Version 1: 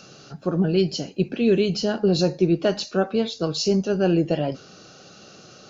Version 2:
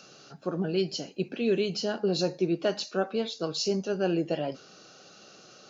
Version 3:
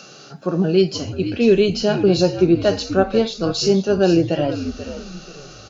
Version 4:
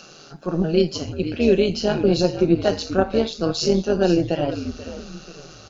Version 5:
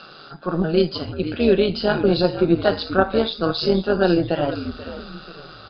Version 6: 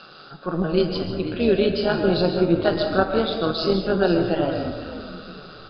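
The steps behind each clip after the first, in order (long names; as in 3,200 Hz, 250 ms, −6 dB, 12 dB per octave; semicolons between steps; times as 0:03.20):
high-pass filter 300 Hz 6 dB per octave; level −4.5 dB
harmonic and percussive parts rebalanced harmonic +7 dB; echo with shifted repeats 485 ms, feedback 33%, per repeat −75 Hz, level −11 dB; level +5.5 dB
amplitude modulation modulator 160 Hz, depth 45%
Chebyshev low-pass with heavy ripple 5,000 Hz, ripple 9 dB; level +8.5 dB
convolution reverb RT60 1.2 s, pre-delay 95 ms, DRR 5.5 dB; level −2.5 dB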